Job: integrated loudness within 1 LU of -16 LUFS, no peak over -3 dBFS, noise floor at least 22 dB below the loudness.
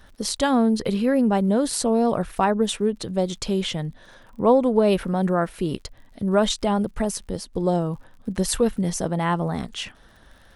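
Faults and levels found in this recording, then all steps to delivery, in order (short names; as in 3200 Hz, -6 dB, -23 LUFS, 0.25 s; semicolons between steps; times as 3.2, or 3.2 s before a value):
ticks 42/s; loudness -23.0 LUFS; peak -6.5 dBFS; loudness target -16.0 LUFS
-> de-click; gain +7 dB; limiter -3 dBFS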